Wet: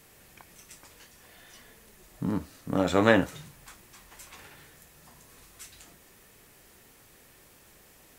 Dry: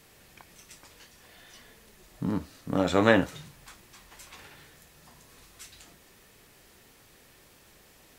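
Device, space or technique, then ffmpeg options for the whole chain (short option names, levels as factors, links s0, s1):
exciter from parts: -filter_complex "[0:a]asplit=2[s0][s1];[s1]highpass=2200,asoftclip=type=tanh:threshold=0.0178,highpass=4900,volume=0.501[s2];[s0][s2]amix=inputs=2:normalize=0"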